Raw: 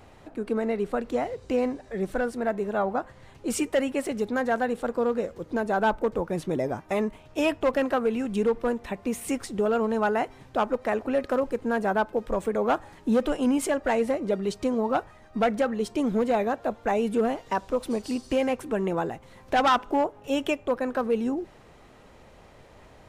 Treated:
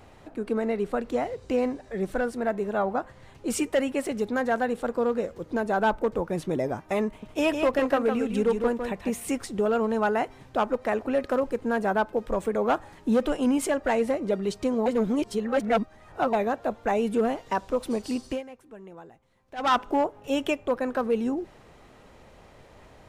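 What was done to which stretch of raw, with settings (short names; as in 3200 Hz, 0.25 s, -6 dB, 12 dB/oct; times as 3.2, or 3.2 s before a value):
7.07–9.11 echo 0.155 s -6 dB
14.86–16.33 reverse
18.26–19.73 dip -18 dB, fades 0.17 s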